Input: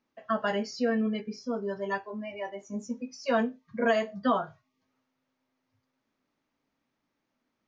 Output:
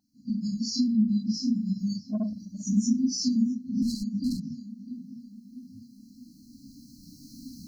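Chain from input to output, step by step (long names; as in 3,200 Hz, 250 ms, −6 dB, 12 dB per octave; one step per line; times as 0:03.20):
random phases in long frames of 100 ms
camcorder AGC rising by 10 dB per second
on a send: tape delay 653 ms, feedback 61%, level −15 dB, low-pass 2,600 Hz
0:03.82–0:04.40: on the sum: hard clipping −25.5 dBFS, distortion −12 dB
brick-wall band-stop 310–4,000 Hz
in parallel at +0.5 dB: brickwall limiter −31 dBFS, peak gain reduction 12.5 dB
on the sum: parametric band 820 Hz +13 dB 0.7 octaves
0:02.10–0:02.64: saturating transformer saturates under 250 Hz
level +2 dB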